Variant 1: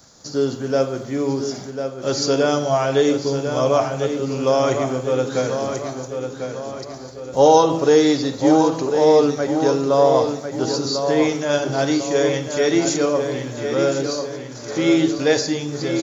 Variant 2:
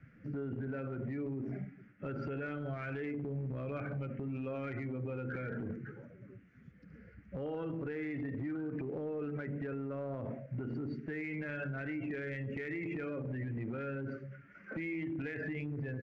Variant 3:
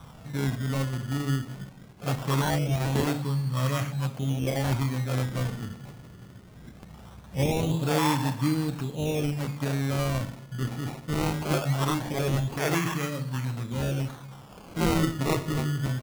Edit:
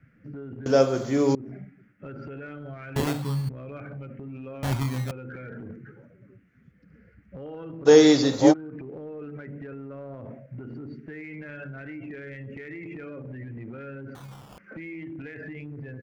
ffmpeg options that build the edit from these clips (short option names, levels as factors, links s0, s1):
-filter_complex "[0:a]asplit=2[s0][s1];[2:a]asplit=3[s2][s3][s4];[1:a]asplit=6[s5][s6][s7][s8][s9][s10];[s5]atrim=end=0.662[s11];[s0]atrim=start=0.658:end=1.352[s12];[s6]atrim=start=1.348:end=2.962[s13];[s2]atrim=start=2.958:end=3.492[s14];[s7]atrim=start=3.488:end=4.632[s15];[s3]atrim=start=4.628:end=5.112[s16];[s8]atrim=start=5.108:end=7.89[s17];[s1]atrim=start=7.85:end=8.54[s18];[s9]atrim=start=8.5:end=14.152[s19];[s4]atrim=start=14.148:end=14.582[s20];[s10]atrim=start=14.578[s21];[s11][s12]acrossfade=d=0.004:c1=hsin:c2=hsin[s22];[s22][s13]acrossfade=d=0.004:c1=hsin:c2=hsin[s23];[s23][s14]acrossfade=d=0.004:c1=hsin:c2=hsin[s24];[s24][s15]acrossfade=d=0.004:c1=hsin:c2=hsin[s25];[s25][s16]acrossfade=d=0.004:c1=hsin:c2=hsin[s26];[s26][s17]acrossfade=d=0.004:c1=hsin:c2=hsin[s27];[s27][s18]acrossfade=d=0.04:c1=tri:c2=tri[s28];[s28][s19]acrossfade=d=0.04:c1=tri:c2=tri[s29];[s29][s20]acrossfade=d=0.004:c1=hsin:c2=hsin[s30];[s30][s21]acrossfade=d=0.004:c1=hsin:c2=hsin"